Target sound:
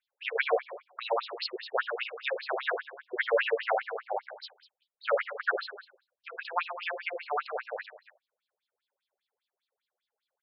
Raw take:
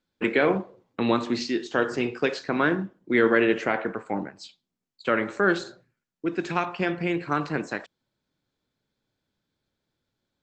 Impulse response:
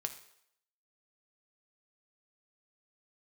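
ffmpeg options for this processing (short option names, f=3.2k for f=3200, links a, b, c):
-af "acrusher=bits=7:mode=log:mix=0:aa=0.000001,aecho=1:1:30|72|130.8|213.1|328.4:0.631|0.398|0.251|0.158|0.1,afftfilt=real='re*between(b*sr/1024,530*pow(4000/530,0.5+0.5*sin(2*PI*5*pts/sr))/1.41,530*pow(4000/530,0.5+0.5*sin(2*PI*5*pts/sr))*1.41)':imag='im*between(b*sr/1024,530*pow(4000/530,0.5+0.5*sin(2*PI*5*pts/sr))/1.41,530*pow(4000/530,0.5+0.5*sin(2*PI*5*pts/sr))*1.41)':win_size=1024:overlap=0.75"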